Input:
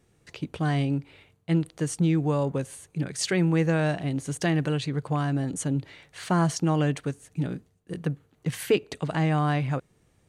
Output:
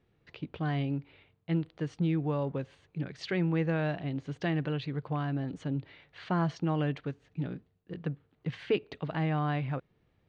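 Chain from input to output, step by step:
low-pass filter 4,000 Hz 24 dB per octave
level −6 dB

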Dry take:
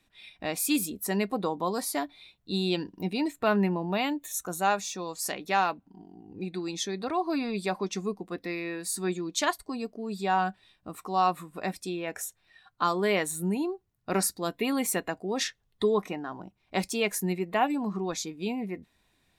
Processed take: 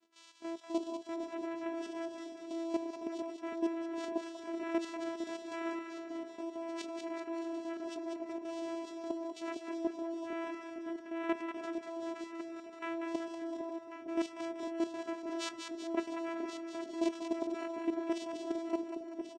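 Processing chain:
partials spread apart or drawn together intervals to 113%
channel vocoder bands 4, saw 332 Hz
reversed playback
downward compressor 8 to 1, threshold −41 dBFS, peak gain reduction 21.5 dB
reversed playback
repeating echo 1,090 ms, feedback 26%, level −11 dB
output level in coarse steps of 10 dB
echo with a time of its own for lows and highs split 690 Hz, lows 456 ms, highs 191 ms, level −5.5 dB
level +11 dB

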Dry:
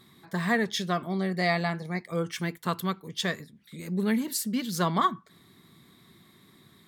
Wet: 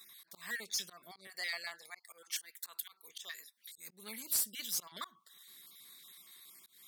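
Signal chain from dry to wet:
time-frequency cells dropped at random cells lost 22%
downward compressor 1.5 to 1, threshold −43 dBFS, peak gain reduction 8.5 dB
volume swells 182 ms
first difference
soft clipping −36 dBFS, distortion −10 dB
0:01.27–0:03.78: high-pass filter 430 Hz 12 dB per octave
level +9 dB

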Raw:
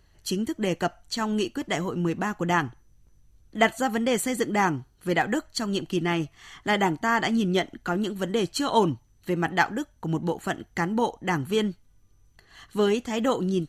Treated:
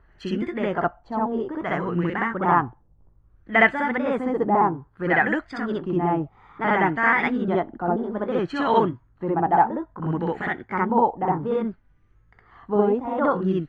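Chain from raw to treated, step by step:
pitch shifter gated in a rhythm +1.5 semitones, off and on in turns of 419 ms
auto-filter low-pass sine 0.6 Hz 810–2,000 Hz
backwards echo 63 ms −3 dB

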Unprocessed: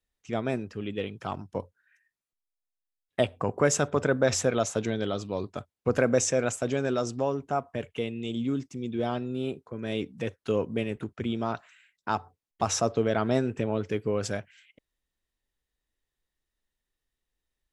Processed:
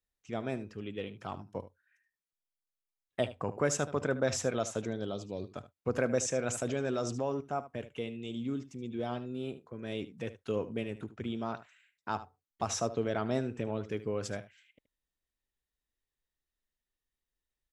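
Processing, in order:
0:04.83–0:05.50: parametric band 3,400 Hz → 800 Hz −14 dB 0.65 octaves
single-tap delay 75 ms −15 dB
0:06.49–0:07.41: envelope flattener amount 50%
level −6.5 dB

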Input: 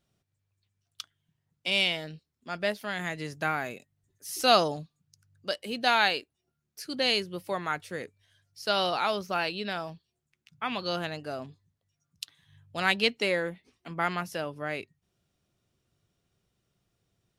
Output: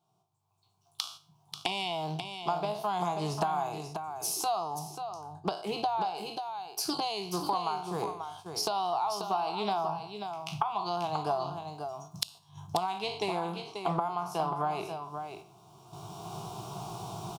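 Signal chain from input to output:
peak hold with a decay on every bin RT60 0.36 s
camcorder AGC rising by 14 dB per second
high-pass filter 78 Hz
flat-topped bell 840 Hz +12.5 dB 1 octave
phaser with its sweep stopped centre 370 Hz, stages 8
downward compressor 12 to 1, threshold −33 dBFS, peak gain reduction 24 dB
single-tap delay 537 ms −7.5 dB
noise gate −51 dBFS, range −6 dB
high-shelf EQ 3,800 Hz −3 dB, from 0:04.79 −11.5 dB, from 0:06.15 −3 dB
highs frequency-modulated by the lows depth 0.16 ms
level +5 dB

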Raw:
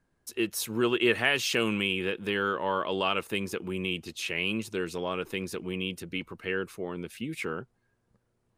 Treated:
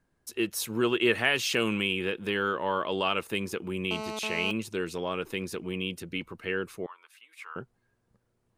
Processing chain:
0:03.91–0:04.51: phone interference −36 dBFS
0:06.86–0:07.56: four-pole ladder high-pass 960 Hz, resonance 65%

